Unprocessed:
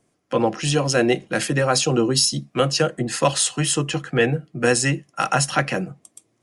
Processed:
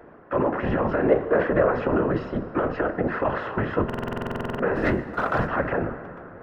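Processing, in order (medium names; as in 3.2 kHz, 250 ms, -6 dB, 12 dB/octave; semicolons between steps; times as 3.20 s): spectral levelling over time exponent 0.6; low-pass 1.6 kHz 24 dB/octave; bass shelf 180 Hz -8.5 dB; band-stop 800 Hz, Q 12; peak limiter -14.5 dBFS, peak gain reduction 9.5 dB; 1.09–1.72 s: small resonant body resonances 490/1100 Hz, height 11 dB; 4.76–5.48 s: waveshaping leveller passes 1; whisper effect; plate-style reverb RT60 3.7 s, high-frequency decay 0.45×, pre-delay 95 ms, DRR 13.5 dB; buffer glitch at 3.85 s, samples 2048, times 15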